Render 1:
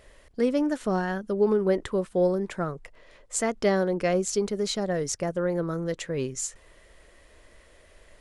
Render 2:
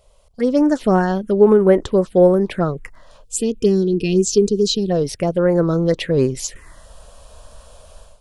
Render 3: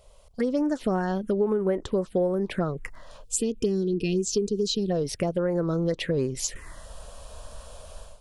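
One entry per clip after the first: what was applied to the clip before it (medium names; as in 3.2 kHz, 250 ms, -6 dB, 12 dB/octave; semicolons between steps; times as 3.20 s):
time-frequency box 3.23–4.90 s, 490–2400 Hz -24 dB; level rider gain up to 14.5 dB; touch-sensitive phaser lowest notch 300 Hz, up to 4.7 kHz, full sweep at -9.5 dBFS
compression 4:1, threshold -24 dBFS, peak gain reduction 14.5 dB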